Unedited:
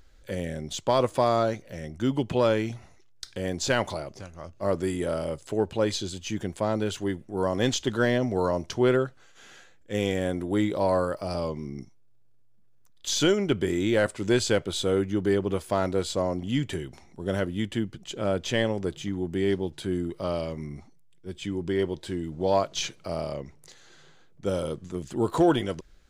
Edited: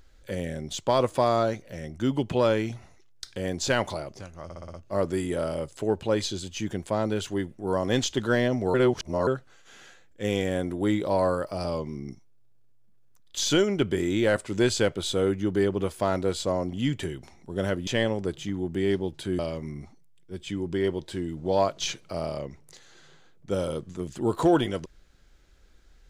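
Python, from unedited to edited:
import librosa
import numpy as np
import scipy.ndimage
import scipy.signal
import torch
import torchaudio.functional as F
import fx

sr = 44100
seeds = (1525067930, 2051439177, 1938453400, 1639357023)

y = fx.edit(x, sr, fx.stutter(start_s=4.44, slice_s=0.06, count=6),
    fx.reverse_span(start_s=8.44, length_s=0.53),
    fx.cut(start_s=17.57, length_s=0.89),
    fx.cut(start_s=19.98, length_s=0.36), tone=tone)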